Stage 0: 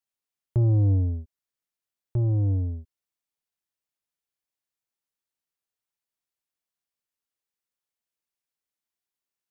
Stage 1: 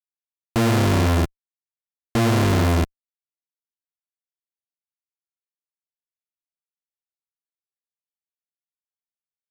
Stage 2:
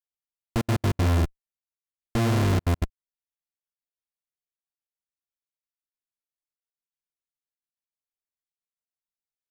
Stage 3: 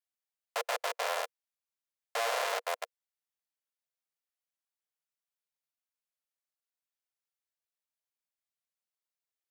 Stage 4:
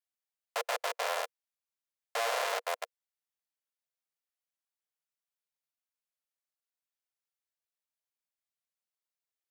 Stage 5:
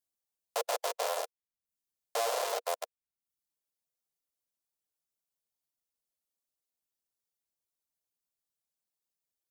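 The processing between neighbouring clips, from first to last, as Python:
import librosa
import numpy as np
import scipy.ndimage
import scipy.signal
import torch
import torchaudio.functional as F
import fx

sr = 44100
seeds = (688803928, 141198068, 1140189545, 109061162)

y1 = np.r_[np.sort(x[:len(x) // 128 * 128].reshape(-1, 128), axis=1).ravel(), x[len(x) // 128 * 128:]]
y1 = fx.fuzz(y1, sr, gain_db=53.0, gate_db=-56.0)
y1 = y1 * 10.0 ** (-4.0 / 20.0)
y2 = fx.low_shelf(y1, sr, hz=66.0, db=12.0)
y2 = fx.step_gate(y2, sr, bpm=197, pattern='xxxxxxxx.x.x.', floor_db=-60.0, edge_ms=4.5)
y2 = y2 * 10.0 ** (-6.0 / 20.0)
y3 = scipy.signal.sosfilt(scipy.signal.cheby1(6, 1.0, 480.0, 'highpass', fs=sr, output='sos'), y2)
y4 = y3
y5 = fx.dereverb_blind(y4, sr, rt60_s=0.54)
y5 = fx.peak_eq(y5, sr, hz=1900.0, db=-11.5, octaves=1.9)
y5 = y5 * 10.0 ** (5.5 / 20.0)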